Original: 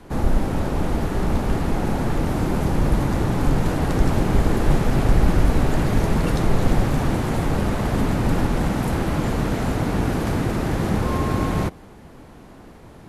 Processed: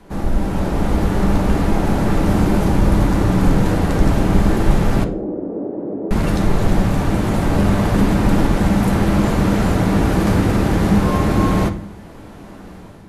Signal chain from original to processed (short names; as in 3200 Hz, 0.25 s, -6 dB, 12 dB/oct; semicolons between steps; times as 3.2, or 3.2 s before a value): AGC gain up to 7 dB; 5.04–6.11 Butterworth band-pass 390 Hz, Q 1.3; reverb RT60 0.55 s, pre-delay 5 ms, DRR 6 dB; gain -1.5 dB